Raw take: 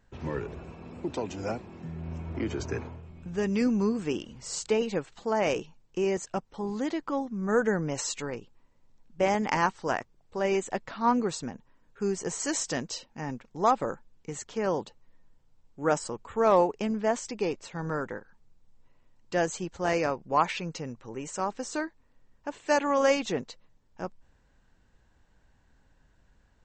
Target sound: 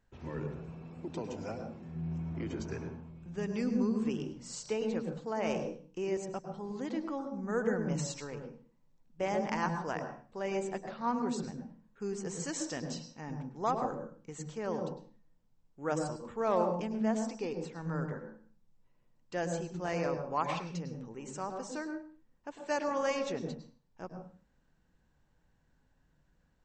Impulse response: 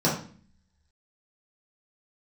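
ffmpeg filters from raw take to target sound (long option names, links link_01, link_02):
-filter_complex "[0:a]asplit=2[link_01][link_02];[1:a]atrim=start_sample=2205,afade=type=out:start_time=0.33:duration=0.01,atrim=end_sample=14994,adelay=101[link_03];[link_02][link_03]afir=irnorm=-1:irlink=0,volume=-21dB[link_04];[link_01][link_04]amix=inputs=2:normalize=0,volume=-8.5dB"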